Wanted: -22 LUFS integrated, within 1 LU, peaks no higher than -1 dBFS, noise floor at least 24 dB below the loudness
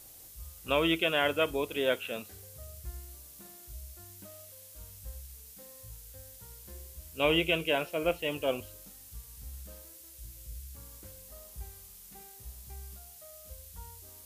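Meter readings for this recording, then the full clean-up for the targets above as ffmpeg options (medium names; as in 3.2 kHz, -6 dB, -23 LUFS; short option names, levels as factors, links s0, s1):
noise floor -52 dBFS; noise floor target -54 dBFS; loudness -30.0 LUFS; peak level -14.0 dBFS; loudness target -22.0 LUFS
-> -af "afftdn=nr=6:nf=-52"
-af "volume=2.51"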